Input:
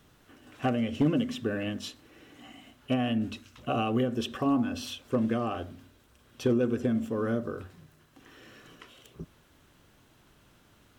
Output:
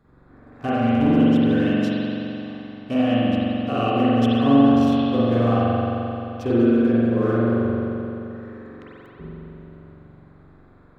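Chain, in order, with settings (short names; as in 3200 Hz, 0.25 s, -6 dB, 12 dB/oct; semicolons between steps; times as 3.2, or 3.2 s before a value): Wiener smoothing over 15 samples; spring tank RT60 3.2 s, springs 43 ms, chirp 50 ms, DRR -10 dB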